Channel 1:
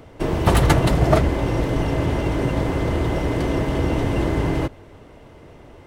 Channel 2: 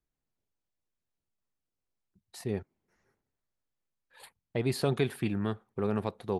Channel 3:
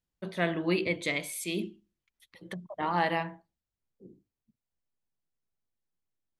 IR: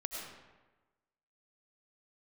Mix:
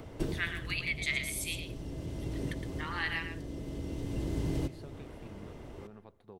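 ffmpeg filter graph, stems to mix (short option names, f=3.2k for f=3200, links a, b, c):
-filter_complex "[0:a]acrossover=split=450|3500[a][b][c];[a]acompressor=threshold=-28dB:ratio=4[d];[b]acompressor=threshold=-53dB:ratio=4[e];[c]acompressor=threshold=-49dB:ratio=4[f];[d][e][f]amix=inputs=3:normalize=0,volume=-3dB,asplit=2[g][h];[h]volume=-12dB[i];[1:a]highshelf=f=4.5k:g=-8.5,acompressor=threshold=-29dB:ratio=6,volume=-17.5dB,asplit=2[j][k];[k]volume=-20.5dB[l];[2:a]highpass=f=1.4k:w=0.5412,highpass=f=1.4k:w=1.3066,volume=0dB,asplit=3[m][n][o];[n]volume=-8.5dB[p];[o]apad=whole_len=258848[q];[g][q]sidechaincompress=threshold=-52dB:ratio=8:attack=30:release=934[r];[3:a]atrim=start_sample=2205[s];[i][l]amix=inputs=2:normalize=0[t];[t][s]afir=irnorm=-1:irlink=0[u];[p]aecho=0:1:114:1[v];[r][j][m][u][v]amix=inputs=5:normalize=0"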